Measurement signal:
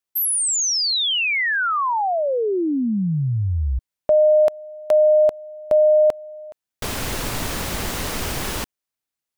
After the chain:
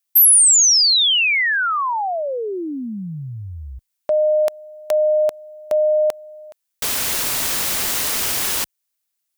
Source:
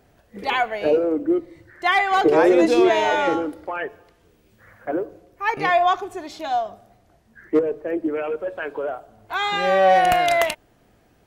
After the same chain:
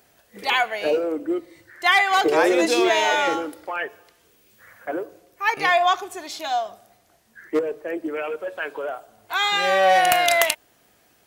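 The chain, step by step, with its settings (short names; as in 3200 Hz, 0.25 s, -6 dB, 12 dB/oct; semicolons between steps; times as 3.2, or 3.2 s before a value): tilt +3 dB/oct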